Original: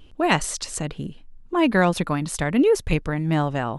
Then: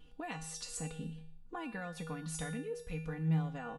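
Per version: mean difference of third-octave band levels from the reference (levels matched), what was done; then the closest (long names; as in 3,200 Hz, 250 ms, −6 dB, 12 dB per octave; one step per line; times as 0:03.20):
5.5 dB: comb filter 4.1 ms, depth 75%
downward compressor 6 to 1, threshold −28 dBFS, peak gain reduction 17 dB
tuned comb filter 160 Hz, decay 0.58 s, harmonics odd, mix 90%
on a send: single-tap delay 120 ms −19.5 dB
on the sum: level +5 dB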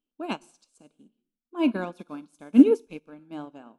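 13.0 dB: Butterworth band-reject 1,900 Hz, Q 4
low shelf with overshoot 160 Hz −13.5 dB, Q 3
reverb whose tail is shaped and stops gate 330 ms falling, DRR 10.5 dB
expander for the loud parts 2.5 to 1, over −31 dBFS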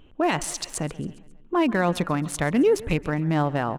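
3.5 dB: adaptive Wiener filter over 9 samples
low-shelf EQ 87 Hz −7.5 dB
brickwall limiter −14 dBFS, peak gain reduction 9.5 dB
on a send: repeating echo 135 ms, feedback 56%, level −20 dB
on the sum: level +1 dB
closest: third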